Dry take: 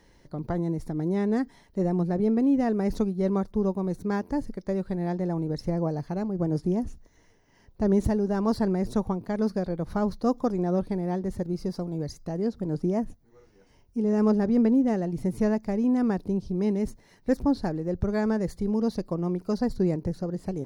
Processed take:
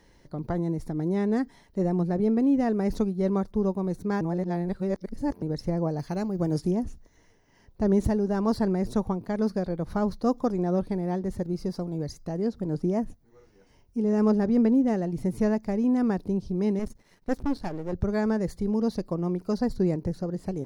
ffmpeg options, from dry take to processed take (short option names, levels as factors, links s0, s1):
-filter_complex "[0:a]asettb=1/sr,asplit=3[s0][s1][s2];[s0]atrim=end=5.994[s3];[s1]atrim=start=5.99:end=6.71,asetpts=PTS-STARTPTS,afade=t=in:d=0.004:c=qsin,afade=t=out:st=0.716:d=0.004:c=qsin,highshelf=f=2400:g=10[s4];[s2]atrim=start=6.706[s5];[s3][s4]acrossfade=d=0.004:c1=hsin:c2=qsin[s6];[s6][s5]acrossfade=d=0.004:c1=qsin:c2=hsin,asettb=1/sr,asplit=3[s7][s8][s9];[s7]atrim=end=16.794[s10];[s8]atrim=start=16.79:end=17.93,asetpts=PTS-STARTPTS,afade=t=in:d=0.004:c=qsin,afade=t=out:st=1.136:d=0.004:c=qsin,aeval=exprs='if(lt(val(0),0),0.251*val(0),val(0))':c=same[s11];[s9]atrim=start=17.926[s12];[s10][s11]acrossfade=d=0.004:c1=hsin:c2=qsin[s13];[s13][s12]acrossfade=d=0.004:c1=qsin:c2=hsin,asplit=3[s14][s15][s16];[s14]atrim=end=4.212[s17];[s15]atrim=start=4.208:end=5.422,asetpts=PTS-STARTPTS,areverse[s18];[s16]atrim=start=5.418[s19];[s17][s18]acrossfade=d=0.004:c1=hsin:c2=hsin[s20];[s20][s19]acrossfade=d=0.004:c1=hsin:c2=hsin"